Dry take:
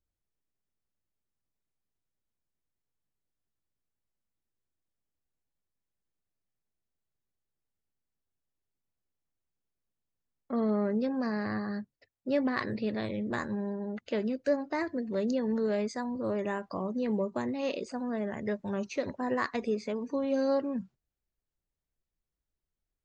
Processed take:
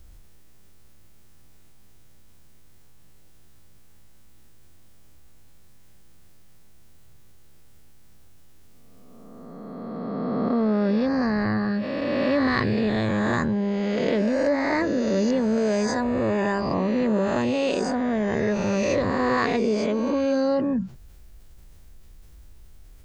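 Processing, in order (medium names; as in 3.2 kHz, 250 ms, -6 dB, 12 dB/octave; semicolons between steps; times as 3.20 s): reverse spectral sustain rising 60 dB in 1.63 s; bass shelf 130 Hz +11 dB; level flattener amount 50%; trim +2 dB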